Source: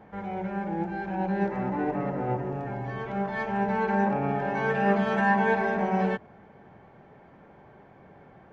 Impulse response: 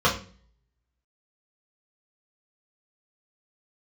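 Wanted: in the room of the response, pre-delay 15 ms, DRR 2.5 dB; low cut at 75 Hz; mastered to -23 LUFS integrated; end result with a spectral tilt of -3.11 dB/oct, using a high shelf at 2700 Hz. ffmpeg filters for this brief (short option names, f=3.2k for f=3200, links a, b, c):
-filter_complex "[0:a]highpass=75,highshelf=f=2.7k:g=3.5,asplit=2[a][b];[1:a]atrim=start_sample=2205,adelay=15[c];[b][c]afir=irnorm=-1:irlink=0,volume=-20dB[d];[a][d]amix=inputs=2:normalize=0,volume=2.5dB"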